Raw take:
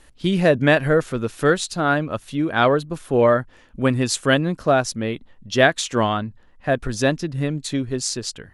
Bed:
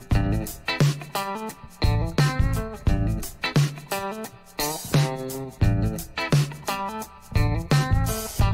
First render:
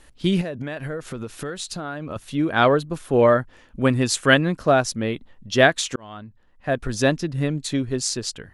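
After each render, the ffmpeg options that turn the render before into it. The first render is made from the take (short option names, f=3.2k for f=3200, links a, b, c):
-filter_complex "[0:a]asettb=1/sr,asplit=3[a][b][c];[a]atrim=end=0.414[d];[b]atrim=start=0.41:end=2.16,asetpts=PTS-STARTPTS,afade=t=in:d=0.004:c=qsin,afade=t=out:st=1.746:d=0.004:c=qsin,acompressor=threshold=-26dB:ratio=10:attack=3.2:release=140:knee=1:detection=peak[e];[c]atrim=start=2.156[f];[d][e]acrossfade=d=0.004:c1=hsin:c2=qsin[g];[g][f]acrossfade=d=0.004:c1=qsin:c2=hsin,asettb=1/sr,asplit=3[h][i][j];[h]atrim=end=4.174[k];[i]atrim=start=4.17:end=4.58,asetpts=PTS-STARTPTS,afade=t=in:d=0.004:c=qsin,afade=t=out:st=0.406:d=0.004:c=qsin,equalizer=f=1.9k:t=o:w=1.3:g=5[l];[j]atrim=start=4.576[m];[k][l]acrossfade=d=0.004:c1=hsin:c2=qsin[n];[n][m]acrossfade=d=0.004:c1=qsin:c2=hsin,asplit=2[o][p];[o]atrim=end=5.96,asetpts=PTS-STARTPTS,afade=t=out:st=5.956:d=0.004:c=hsin[q];[p]atrim=start=5.96,asetpts=PTS-STARTPTS,afade=t=in:d=1.05[r];[q][r]concat=n=2:v=0:a=1"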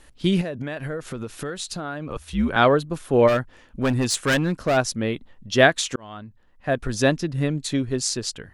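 -filter_complex "[0:a]asettb=1/sr,asplit=3[a][b][c];[a]atrim=end=2.104[d];[b]atrim=start=2.1:end=2.56,asetpts=PTS-STARTPTS,afade=t=in:d=0.004:c=qsin,afade=t=out:st=0.456:d=0.004:c=qsin,afreqshift=-87[e];[c]atrim=start=2.556[f];[d][e]acrossfade=d=0.004:c1=hsin:c2=qsin[g];[g][f]acrossfade=d=0.004:c1=qsin:c2=hsin,asplit=3[h][i][j];[h]afade=t=out:st=3.27:d=0.02[k];[i]volume=16.5dB,asoftclip=hard,volume=-16.5dB,afade=t=in:st=3.27:d=0.02,afade=t=out:st=4.76:d=0.02[l];[j]afade=t=in:st=4.76:d=0.02[m];[k][l][m]amix=inputs=3:normalize=0"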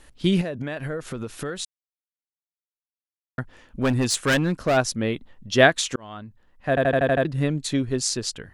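-filter_complex "[0:a]asplit=10[a][b][c][d][e][f][g][h][i][j];[a]atrim=end=1.65,asetpts=PTS-STARTPTS,afade=t=out:st=1.646:d=0.004:c=hsin[k];[b]atrim=start=1.65:end=3.38,asetpts=PTS-STARTPTS,volume=0[l];[c]atrim=start=3.38:end=6.772,asetpts=PTS-STARTPTS,afade=t=in:d=0.004:c=hsin[m];[d]atrim=start=6.688:end=6.772[n];[e]atrim=start=6.688:end=6.772[o];[f]atrim=start=6.688:end=6.772[p];[g]atrim=start=6.688:end=6.772[q];[h]atrim=start=6.688:end=6.772[r];[i]atrim=start=6.688:end=6.772[s];[j]atrim=start=7.248[t];[k][l][m]concat=n=3:v=0:a=1[u];[u][n]acrossfade=d=0.004:c1=hsin:c2=hsin[v];[v][o]acrossfade=d=0.004:c1=hsin:c2=hsin[w];[w][p]acrossfade=d=0.004:c1=hsin:c2=hsin[x];[x][q]acrossfade=d=0.004:c1=hsin:c2=hsin[y];[y][r]acrossfade=d=0.004:c1=hsin:c2=hsin[z];[z][s]acrossfade=d=0.004:c1=hsin:c2=hsin[aa];[aa][t]acrossfade=d=0.004:c1=hsin:c2=hsin"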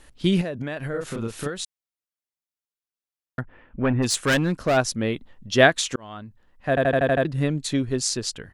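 -filter_complex "[0:a]asplit=3[a][b][c];[a]afade=t=out:st=0.93:d=0.02[d];[b]asplit=2[e][f];[f]adelay=35,volume=-2dB[g];[e][g]amix=inputs=2:normalize=0,afade=t=in:st=0.93:d=0.02,afade=t=out:st=1.47:d=0.02[h];[c]afade=t=in:st=1.47:d=0.02[i];[d][h][i]amix=inputs=3:normalize=0,asplit=3[j][k][l];[j]afade=t=out:st=3.4:d=0.02[m];[k]lowpass=f=2.5k:w=0.5412,lowpass=f=2.5k:w=1.3066,afade=t=in:st=3.4:d=0.02,afade=t=out:st=4.02:d=0.02[n];[l]afade=t=in:st=4.02:d=0.02[o];[m][n][o]amix=inputs=3:normalize=0"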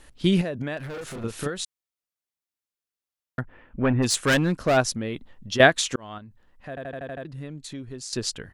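-filter_complex "[0:a]asettb=1/sr,asplit=3[a][b][c];[a]atrim=end=0.774[d];[b]atrim=start=0.77:end=1.24,asetpts=PTS-STARTPTS,afade=t=in:d=0.004:c=qsin,afade=t=out:st=0.466:d=0.004:c=qsin,volume=33dB,asoftclip=hard,volume=-33dB[e];[c]atrim=start=1.236[f];[d][e]acrossfade=d=0.004:c1=hsin:c2=qsin[g];[g][f]acrossfade=d=0.004:c1=qsin:c2=hsin,asettb=1/sr,asplit=3[h][i][j];[h]atrim=end=4.904[k];[i]atrim=start=4.9:end=5.6,asetpts=PTS-STARTPTS,afade=t=in:d=0.004:c=qsin,afade=t=out:st=0.696:d=0.004:c=qsin,acompressor=threshold=-25dB:ratio=5:attack=3.2:release=140:knee=1:detection=peak[l];[j]atrim=start=5.596[m];[k][l]acrossfade=d=0.004:c1=hsin:c2=qsin[n];[n][m]acrossfade=d=0.004:c1=qsin:c2=hsin,asettb=1/sr,asplit=3[o][p][q];[o]atrim=end=6.184[r];[p]atrim=start=6.18:end=8.13,asetpts=PTS-STARTPTS,afade=t=in:d=0.004:c=qsin,afade=t=out:st=1.946:d=0.004:c=qsin,acompressor=threshold=-44dB:ratio=2:attack=3.2:release=140:knee=1:detection=peak[s];[q]atrim=start=8.126[t];[r][s]acrossfade=d=0.004:c1=hsin:c2=qsin[u];[u][t]acrossfade=d=0.004:c1=qsin:c2=hsin"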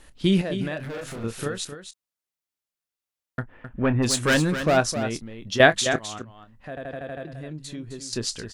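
-filter_complex "[0:a]asplit=2[a][b];[b]adelay=26,volume=-13.5dB[c];[a][c]amix=inputs=2:normalize=0,asplit=2[d][e];[e]aecho=0:1:261:0.316[f];[d][f]amix=inputs=2:normalize=0"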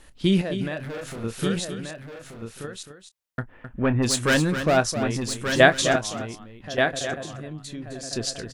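-af "aecho=1:1:1181:0.473"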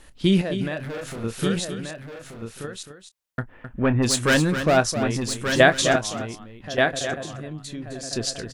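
-af "volume=1.5dB,alimiter=limit=-3dB:level=0:latency=1"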